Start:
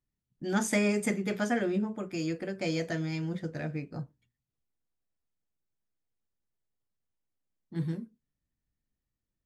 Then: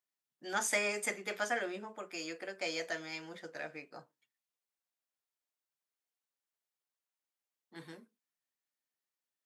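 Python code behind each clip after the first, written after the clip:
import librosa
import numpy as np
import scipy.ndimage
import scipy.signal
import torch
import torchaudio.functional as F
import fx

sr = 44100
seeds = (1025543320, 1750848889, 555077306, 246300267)

y = scipy.signal.sosfilt(scipy.signal.butter(2, 660.0, 'highpass', fs=sr, output='sos'), x)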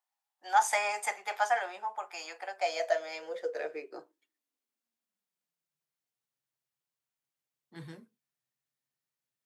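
y = fx.filter_sweep_highpass(x, sr, from_hz=820.0, to_hz=130.0, start_s=2.41, end_s=5.98, q=7.4)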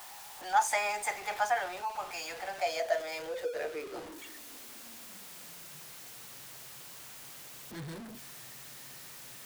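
y = x + 0.5 * 10.0 ** (-38.0 / 20.0) * np.sign(x)
y = F.gain(torch.from_numpy(y), -2.0).numpy()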